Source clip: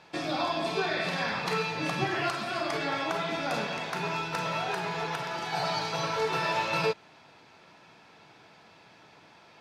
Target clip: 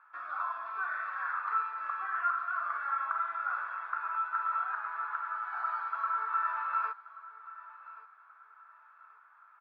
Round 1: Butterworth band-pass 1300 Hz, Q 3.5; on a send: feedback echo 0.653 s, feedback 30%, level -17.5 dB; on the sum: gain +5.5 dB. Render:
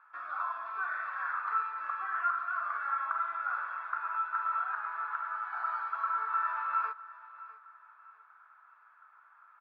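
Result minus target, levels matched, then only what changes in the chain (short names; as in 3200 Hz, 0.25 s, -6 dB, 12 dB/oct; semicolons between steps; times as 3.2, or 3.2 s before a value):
echo 0.477 s early
change: feedback echo 1.13 s, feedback 30%, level -17.5 dB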